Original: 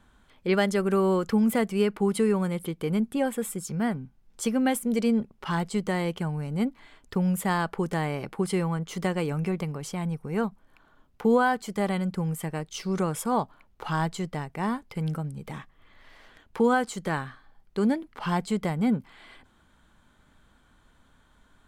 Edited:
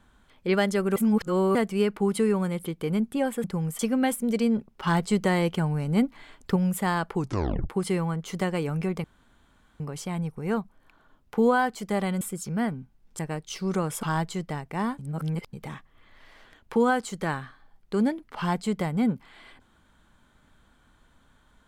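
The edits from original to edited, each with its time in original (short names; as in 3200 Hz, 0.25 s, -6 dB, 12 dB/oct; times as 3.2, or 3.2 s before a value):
0.96–1.55 reverse
3.44–4.42 swap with 12.08–12.43
5.5–7.19 gain +4 dB
7.78 tape stop 0.54 s
9.67 insert room tone 0.76 s
13.27–13.87 cut
14.83–15.37 reverse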